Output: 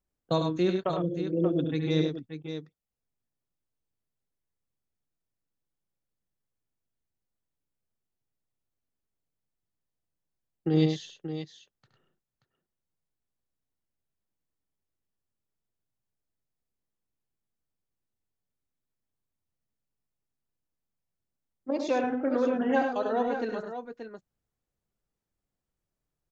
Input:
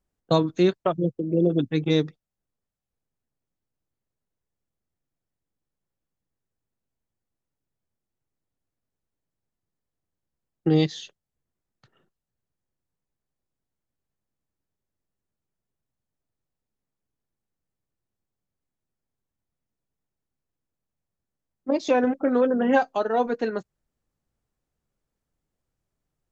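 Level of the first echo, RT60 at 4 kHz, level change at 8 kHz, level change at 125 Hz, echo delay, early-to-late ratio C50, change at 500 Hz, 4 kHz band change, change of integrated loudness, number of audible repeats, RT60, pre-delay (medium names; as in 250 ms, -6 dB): -8.5 dB, no reverb, no reading, -3.5 dB, 70 ms, no reverb, -5.0 dB, -4.5 dB, -5.5 dB, 3, no reverb, no reverb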